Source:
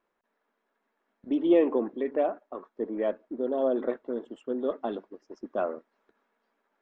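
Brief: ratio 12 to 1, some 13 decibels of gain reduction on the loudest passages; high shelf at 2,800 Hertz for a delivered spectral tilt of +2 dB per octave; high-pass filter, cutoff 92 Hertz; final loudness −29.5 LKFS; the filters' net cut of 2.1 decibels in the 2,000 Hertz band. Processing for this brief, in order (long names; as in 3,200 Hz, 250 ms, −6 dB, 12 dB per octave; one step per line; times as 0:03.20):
high-pass filter 92 Hz
parametric band 2,000 Hz −4 dB
high-shelf EQ 2,800 Hz +3.5 dB
downward compressor 12 to 1, threshold −29 dBFS
level +6.5 dB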